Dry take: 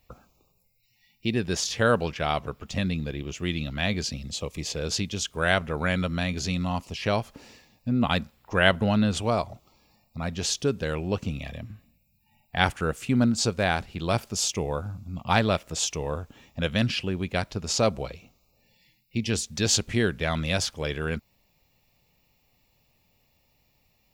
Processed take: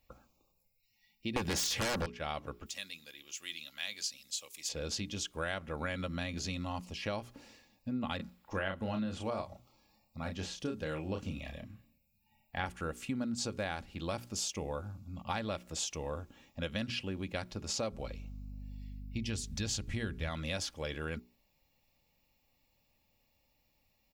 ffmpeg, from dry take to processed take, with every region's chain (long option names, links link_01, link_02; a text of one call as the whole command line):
ffmpeg -i in.wav -filter_complex "[0:a]asettb=1/sr,asplit=3[link_01][link_02][link_03];[link_01]atrim=end=1.364[link_04];[link_02]atrim=start=1.36:end=2.06,asetpts=PTS-STARTPTS,afade=type=in:duration=0.004:curve=qsin,afade=type=out:start_time=0.696:duration=0.004:curve=qsin,highshelf=frequency=8200:gain=5.5,aeval=exprs='0.335*sin(PI/2*5.62*val(0)/0.335)':channel_layout=same[link_05];[link_03]atrim=start=2.056[link_06];[link_04][link_05]acrossfade=duration=0.004:curve1=hsin:curve2=qsin[link_07];[link_07][link_06]acrossfade=duration=0.004:curve1=qsin:curve2=hsin,asettb=1/sr,asplit=3[link_08][link_09][link_10];[link_08]atrim=end=2.664[link_11];[link_09]atrim=start=2.66:end=4.69,asetpts=PTS-STARTPTS,afade=type=in:duration=0.004:curve=qsin,afade=type=out:start_time=2.026:duration=0.004:curve=qsin,aderivative,acontrast=89[link_12];[link_10]atrim=start=4.686[link_13];[link_11][link_12]acrossfade=duration=0.004:curve1=hsin:curve2=qsin[link_14];[link_14][link_13]acrossfade=duration=0.004:curve1=qsin:curve2=hsin,asettb=1/sr,asplit=3[link_15][link_16][link_17];[link_15]atrim=end=8.164[link_18];[link_16]atrim=start=8.16:end=12.66,asetpts=PTS-STARTPTS,afade=type=in:duration=0.004:curve=qsin,afade=type=out:start_time=4.496:duration=0.004:curve=qsin,asplit=2[link_19][link_20];[link_20]adelay=32,volume=-6.5dB[link_21];[link_19][link_21]amix=inputs=2:normalize=0,atrim=end_sample=198450,acrossover=split=2800[link_22][link_23];[link_23]acompressor=threshold=-39dB:ratio=4:attack=1:release=60[link_24];[link_22][link_24]amix=inputs=2:normalize=0[link_25];[link_17]atrim=start=12.656[link_26];[link_18][link_25]acrossfade=duration=0.004:curve1=hsin:curve2=qsin[link_27];[link_27][link_26]acrossfade=duration=0.004:curve1=qsin:curve2=hsin,asettb=1/sr,asplit=3[link_28][link_29][link_30];[link_28]atrim=end=17.924[link_31];[link_29]atrim=start=17.92:end=20.29,asetpts=PTS-STARTPTS,afade=type=in:duration=0.004:curve=qsin,afade=type=out:start_time=2.366:duration=0.004:curve=qsin,asubboost=boost=4:cutoff=180,aeval=exprs='val(0)+0.0158*(sin(2*PI*50*n/s)+sin(2*PI*2*50*n/s)/2+sin(2*PI*3*50*n/s)/3+sin(2*PI*4*50*n/s)/4+sin(2*PI*5*50*n/s)/5)':channel_layout=same[link_32];[link_30]atrim=start=20.286[link_33];[link_31][link_32]acrossfade=duration=0.004:curve1=hsin:curve2=qsin[link_34];[link_34][link_33]acrossfade=duration=0.004:curve1=qsin:curve2=hsin,bandreject=frequency=60:width_type=h:width=6,bandreject=frequency=120:width_type=h:width=6,bandreject=frequency=180:width_type=h:width=6,bandreject=frequency=240:width_type=h:width=6,bandreject=frequency=300:width_type=h:width=6,bandreject=frequency=360:width_type=h:width=6,bandreject=frequency=420:width_type=h:width=6,aecho=1:1:3.6:0.32,acompressor=threshold=-25dB:ratio=6,volume=-7.5dB" out.wav